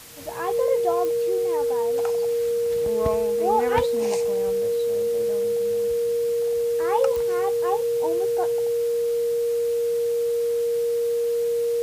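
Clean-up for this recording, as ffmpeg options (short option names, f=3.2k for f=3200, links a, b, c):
-af "adeclick=t=4,bandreject=f=470:w=30,afwtdn=0.0071"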